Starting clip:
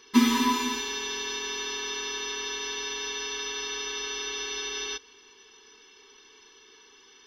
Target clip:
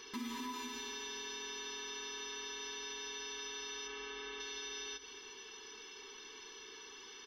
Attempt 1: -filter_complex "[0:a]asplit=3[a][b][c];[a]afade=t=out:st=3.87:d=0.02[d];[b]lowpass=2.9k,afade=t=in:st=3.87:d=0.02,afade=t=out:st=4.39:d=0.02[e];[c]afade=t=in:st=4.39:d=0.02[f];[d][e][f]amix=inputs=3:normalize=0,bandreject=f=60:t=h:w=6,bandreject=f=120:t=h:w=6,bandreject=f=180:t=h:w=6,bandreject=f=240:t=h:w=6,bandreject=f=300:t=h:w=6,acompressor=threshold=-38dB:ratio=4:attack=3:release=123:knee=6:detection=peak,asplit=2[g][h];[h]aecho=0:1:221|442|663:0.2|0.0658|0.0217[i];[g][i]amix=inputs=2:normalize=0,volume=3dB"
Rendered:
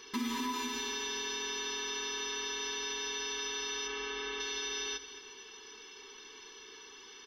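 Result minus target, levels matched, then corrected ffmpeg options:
compressor: peak gain reduction -7 dB
-filter_complex "[0:a]asplit=3[a][b][c];[a]afade=t=out:st=3.87:d=0.02[d];[b]lowpass=2.9k,afade=t=in:st=3.87:d=0.02,afade=t=out:st=4.39:d=0.02[e];[c]afade=t=in:st=4.39:d=0.02[f];[d][e][f]amix=inputs=3:normalize=0,bandreject=f=60:t=h:w=6,bandreject=f=120:t=h:w=6,bandreject=f=180:t=h:w=6,bandreject=f=240:t=h:w=6,bandreject=f=300:t=h:w=6,acompressor=threshold=-47.5dB:ratio=4:attack=3:release=123:knee=6:detection=peak,asplit=2[g][h];[h]aecho=0:1:221|442|663:0.2|0.0658|0.0217[i];[g][i]amix=inputs=2:normalize=0,volume=3dB"

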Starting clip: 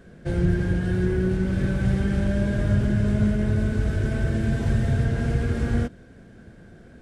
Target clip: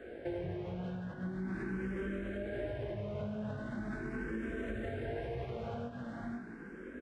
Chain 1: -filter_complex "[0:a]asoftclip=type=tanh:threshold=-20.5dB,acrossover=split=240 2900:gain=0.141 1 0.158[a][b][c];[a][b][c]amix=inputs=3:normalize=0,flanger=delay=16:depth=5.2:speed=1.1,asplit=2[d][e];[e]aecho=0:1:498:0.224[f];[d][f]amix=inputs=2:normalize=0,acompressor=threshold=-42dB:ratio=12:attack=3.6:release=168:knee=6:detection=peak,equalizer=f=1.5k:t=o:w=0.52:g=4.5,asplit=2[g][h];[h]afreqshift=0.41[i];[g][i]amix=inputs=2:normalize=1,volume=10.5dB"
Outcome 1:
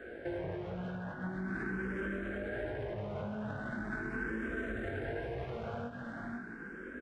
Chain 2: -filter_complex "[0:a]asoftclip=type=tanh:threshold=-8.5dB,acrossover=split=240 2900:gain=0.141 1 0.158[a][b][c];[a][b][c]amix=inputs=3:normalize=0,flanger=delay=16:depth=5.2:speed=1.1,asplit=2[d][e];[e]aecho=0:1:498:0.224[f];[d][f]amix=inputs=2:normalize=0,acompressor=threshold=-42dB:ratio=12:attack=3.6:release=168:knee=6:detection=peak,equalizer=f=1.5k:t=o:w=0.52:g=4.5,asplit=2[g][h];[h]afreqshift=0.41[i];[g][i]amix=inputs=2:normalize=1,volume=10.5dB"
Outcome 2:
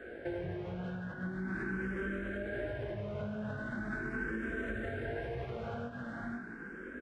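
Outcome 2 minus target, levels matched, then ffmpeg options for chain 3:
2000 Hz band +5.5 dB
-filter_complex "[0:a]asoftclip=type=tanh:threshold=-8.5dB,acrossover=split=240 2900:gain=0.141 1 0.158[a][b][c];[a][b][c]amix=inputs=3:normalize=0,flanger=delay=16:depth=5.2:speed=1.1,asplit=2[d][e];[e]aecho=0:1:498:0.224[f];[d][f]amix=inputs=2:normalize=0,acompressor=threshold=-42dB:ratio=12:attack=3.6:release=168:knee=6:detection=peak,equalizer=f=1.5k:t=o:w=0.52:g=-3.5,asplit=2[g][h];[h]afreqshift=0.41[i];[g][i]amix=inputs=2:normalize=1,volume=10.5dB"

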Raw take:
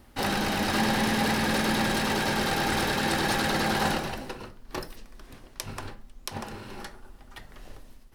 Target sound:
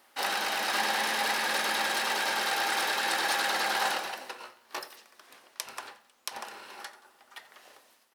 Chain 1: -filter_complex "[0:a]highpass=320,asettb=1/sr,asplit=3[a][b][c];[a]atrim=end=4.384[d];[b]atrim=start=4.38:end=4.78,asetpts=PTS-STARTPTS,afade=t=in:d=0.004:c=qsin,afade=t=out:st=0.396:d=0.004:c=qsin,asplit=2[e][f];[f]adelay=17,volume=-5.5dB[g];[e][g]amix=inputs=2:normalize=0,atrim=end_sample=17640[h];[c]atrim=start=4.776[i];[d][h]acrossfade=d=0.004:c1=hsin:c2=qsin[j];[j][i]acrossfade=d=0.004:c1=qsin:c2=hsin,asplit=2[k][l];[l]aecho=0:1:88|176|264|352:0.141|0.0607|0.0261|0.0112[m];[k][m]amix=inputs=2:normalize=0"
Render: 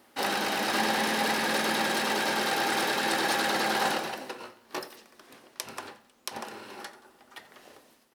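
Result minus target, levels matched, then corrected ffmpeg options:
250 Hz band +10.5 dB
-filter_complex "[0:a]highpass=690,asettb=1/sr,asplit=3[a][b][c];[a]atrim=end=4.384[d];[b]atrim=start=4.38:end=4.78,asetpts=PTS-STARTPTS,afade=t=in:d=0.004:c=qsin,afade=t=out:st=0.396:d=0.004:c=qsin,asplit=2[e][f];[f]adelay=17,volume=-5.5dB[g];[e][g]amix=inputs=2:normalize=0,atrim=end_sample=17640[h];[c]atrim=start=4.776[i];[d][h]acrossfade=d=0.004:c1=hsin:c2=qsin[j];[j][i]acrossfade=d=0.004:c1=qsin:c2=hsin,asplit=2[k][l];[l]aecho=0:1:88|176|264|352:0.141|0.0607|0.0261|0.0112[m];[k][m]amix=inputs=2:normalize=0"

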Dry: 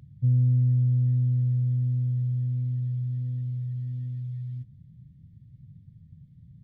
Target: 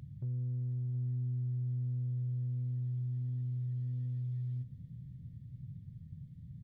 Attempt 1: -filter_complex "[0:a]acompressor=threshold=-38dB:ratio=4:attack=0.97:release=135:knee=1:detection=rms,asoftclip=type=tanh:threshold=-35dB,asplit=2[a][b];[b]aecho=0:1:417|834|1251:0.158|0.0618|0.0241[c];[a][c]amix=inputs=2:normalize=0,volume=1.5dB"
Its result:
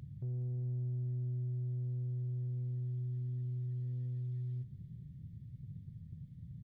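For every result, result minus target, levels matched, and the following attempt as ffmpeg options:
echo 0.306 s early; soft clip: distortion +10 dB
-filter_complex "[0:a]acompressor=threshold=-38dB:ratio=4:attack=0.97:release=135:knee=1:detection=rms,asoftclip=type=tanh:threshold=-35dB,asplit=2[a][b];[b]aecho=0:1:723|1446|2169:0.158|0.0618|0.0241[c];[a][c]amix=inputs=2:normalize=0,volume=1.5dB"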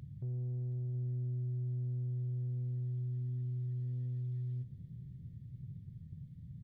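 soft clip: distortion +10 dB
-filter_complex "[0:a]acompressor=threshold=-38dB:ratio=4:attack=0.97:release=135:knee=1:detection=rms,asoftclip=type=tanh:threshold=-29dB,asplit=2[a][b];[b]aecho=0:1:723|1446|2169:0.158|0.0618|0.0241[c];[a][c]amix=inputs=2:normalize=0,volume=1.5dB"

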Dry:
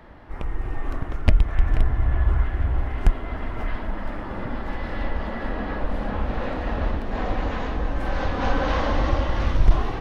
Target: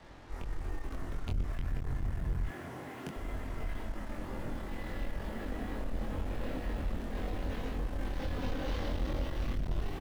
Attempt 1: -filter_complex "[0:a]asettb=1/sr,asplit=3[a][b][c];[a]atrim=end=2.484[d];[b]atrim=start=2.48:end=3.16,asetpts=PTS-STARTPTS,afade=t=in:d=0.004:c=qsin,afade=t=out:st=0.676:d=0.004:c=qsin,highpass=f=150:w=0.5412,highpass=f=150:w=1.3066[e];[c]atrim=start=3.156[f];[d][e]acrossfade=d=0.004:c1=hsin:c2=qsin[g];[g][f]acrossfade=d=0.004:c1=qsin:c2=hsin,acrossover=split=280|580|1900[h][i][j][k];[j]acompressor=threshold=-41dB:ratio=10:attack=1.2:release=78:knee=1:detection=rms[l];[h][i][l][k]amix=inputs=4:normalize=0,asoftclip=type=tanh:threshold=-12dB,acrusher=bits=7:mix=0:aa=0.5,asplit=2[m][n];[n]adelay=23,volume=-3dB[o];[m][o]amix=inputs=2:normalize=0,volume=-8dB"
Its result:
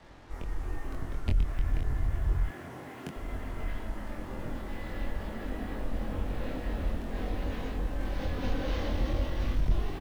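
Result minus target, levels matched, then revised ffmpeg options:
soft clip: distortion -8 dB
-filter_complex "[0:a]asettb=1/sr,asplit=3[a][b][c];[a]atrim=end=2.484[d];[b]atrim=start=2.48:end=3.16,asetpts=PTS-STARTPTS,afade=t=in:d=0.004:c=qsin,afade=t=out:st=0.676:d=0.004:c=qsin,highpass=f=150:w=0.5412,highpass=f=150:w=1.3066[e];[c]atrim=start=3.156[f];[d][e]acrossfade=d=0.004:c1=hsin:c2=qsin[g];[g][f]acrossfade=d=0.004:c1=qsin:c2=hsin,acrossover=split=280|580|1900[h][i][j][k];[j]acompressor=threshold=-41dB:ratio=10:attack=1.2:release=78:knee=1:detection=rms[l];[h][i][l][k]amix=inputs=4:normalize=0,asoftclip=type=tanh:threshold=-23dB,acrusher=bits=7:mix=0:aa=0.5,asplit=2[m][n];[n]adelay=23,volume=-3dB[o];[m][o]amix=inputs=2:normalize=0,volume=-8dB"

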